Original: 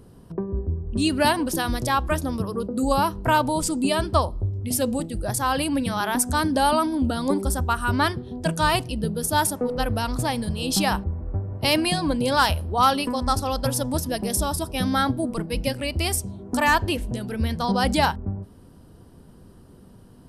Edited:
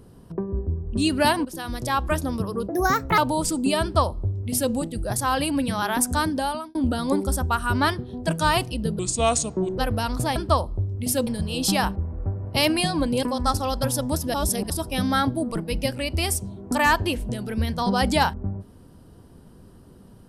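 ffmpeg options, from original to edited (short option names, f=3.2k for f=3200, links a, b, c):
-filter_complex "[0:a]asplit=12[a][b][c][d][e][f][g][h][i][j][k][l];[a]atrim=end=1.45,asetpts=PTS-STARTPTS,afade=t=out:st=1.446:d=0.004:c=hsin:silence=0.199526[m];[b]atrim=start=1.45:end=2.694,asetpts=PTS-STARTPTS,afade=t=in:d=0.62:silence=0.199526[n];[c]atrim=start=2.69:end=3.36,asetpts=PTS-STARTPTS,asetrate=60417,aresample=44100,atrim=end_sample=21567,asetpts=PTS-STARTPTS[o];[d]atrim=start=3.356:end=6.93,asetpts=PTS-STARTPTS,afade=t=out:st=2.994:d=0.58[p];[e]atrim=start=6.93:end=9.174,asetpts=PTS-STARTPTS,afade=t=in:d=0.004:c=hsin[q];[f]atrim=start=9.17:end=9.77,asetpts=PTS-STARTPTS,asetrate=33516,aresample=44100[r];[g]atrim=start=9.766:end=10.352[s];[h]atrim=start=3.998:end=4.912[t];[i]atrim=start=10.348:end=12.312[u];[j]atrim=start=13.048:end=14.162[v];[k]atrim=start=14.158:end=14.522,asetpts=PTS-STARTPTS,areverse[w];[l]atrim=start=14.518[x];[m][n]concat=n=2:v=0:a=1[y];[y][o]acrossfade=d=0.004:c1=hsin:c2=hsin[z];[p][q]concat=n=2:v=0:a=1[aa];[z][aa]acrossfade=d=0.004:c1=hsin:c2=hsin[ab];[ab][r]acrossfade=d=0.004:c1=hsin:c2=hsin[ac];[ac][s]acrossfade=d=0.004:c1=hsin:c2=hsin[ad];[ad][t]acrossfade=d=0.004:c1=hsin:c2=hsin[ae];[ae][u]acrossfade=d=0.004:c1=hsin:c2=hsin[af];[af][v]acrossfade=d=0.004:c1=hsin:c2=hsin[ag];[ag][w]acrossfade=d=0.004:c1=hsin:c2=hsin[ah];[ah][x]acrossfade=d=0.004:c1=hsin:c2=hsin"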